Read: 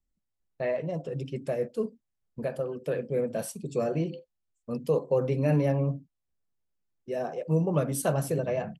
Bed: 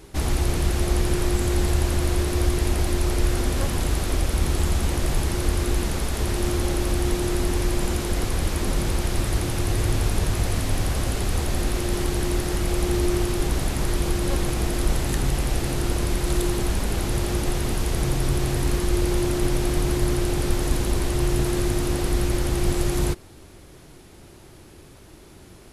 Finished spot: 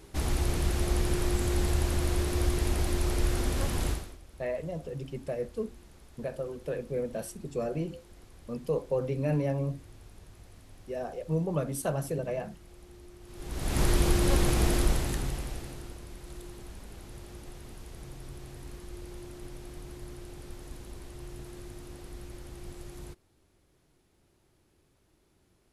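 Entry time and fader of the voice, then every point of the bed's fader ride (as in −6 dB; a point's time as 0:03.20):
3.80 s, −4.0 dB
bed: 0:03.90 −6 dB
0:04.19 −29 dB
0:13.20 −29 dB
0:13.79 −1 dB
0:14.73 −1 dB
0:16.01 −21.5 dB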